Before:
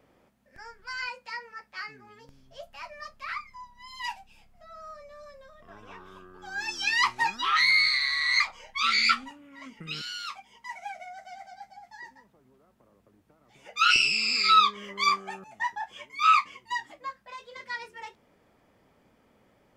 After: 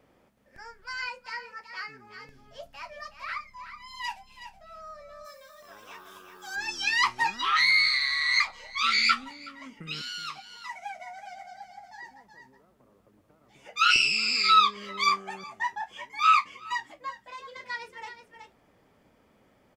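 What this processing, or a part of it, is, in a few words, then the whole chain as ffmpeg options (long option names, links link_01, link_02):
ducked delay: -filter_complex "[0:a]asplit=3[link_01][link_02][link_03];[link_02]adelay=372,volume=-7.5dB[link_04];[link_03]apad=whole_len=887842[link_05];[link_04][link_05]sidechaincompress=threshold=-38dB:ratio=12:attack=11:release=684[link_06];[link_01][link_06]amix=inputs=2:normalize=0,asplit=3[link_07][link_08][link_09];[link_07]afade=type=out:start_time=5.24:duration=0.02[link_10];[link_08]aemphasis=mode=production:type=riaa,afade=type=in:start_time=5.24:duration=0.02,afade=type=out:start_time=6.55:duration=0.02[link_11];[link_09]afade=type=in:start_time=6.55:duration=0.02[link_12];[link_10][link_11][link_12]amix=inputs=3:normalize=0"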